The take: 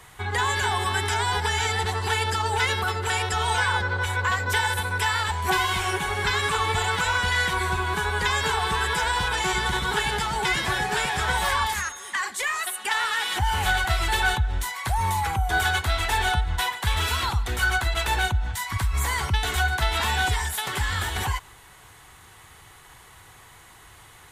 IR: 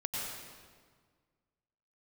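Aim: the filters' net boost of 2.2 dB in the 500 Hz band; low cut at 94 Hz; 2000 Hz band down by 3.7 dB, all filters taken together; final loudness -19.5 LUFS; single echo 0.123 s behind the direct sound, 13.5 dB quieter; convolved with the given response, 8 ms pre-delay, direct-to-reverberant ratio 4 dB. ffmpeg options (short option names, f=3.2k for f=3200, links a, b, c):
-filter_complex "[0:a]highpass=94,equalizer=f=500:t=o:g=3,equalizer=f=2k:t=o:g=-5.5,aecho=1:1:123:0.211,asplit=2[a][b];[1:a]atrim=start_sample=2205,adelay=8[c];[b][c]afir=irnorm=-1:irlink=0,volume=-8dB[d];[a][d]amix=inputs=2:normalize=0,volume=4.5dB"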